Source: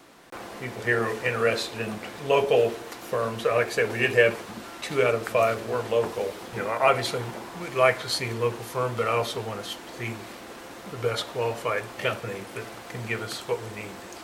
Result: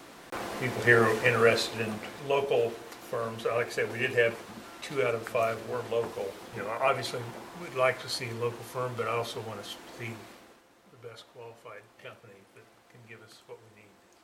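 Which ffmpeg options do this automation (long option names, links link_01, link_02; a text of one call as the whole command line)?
ffmpeg -i in.wav -af "volume=3dB,afade=type=out:start_time=1.06:duration=1.28:silence=0.354813,afade=type=out:start_time=10.13:duration=0.5:silence=0.223872" out.wav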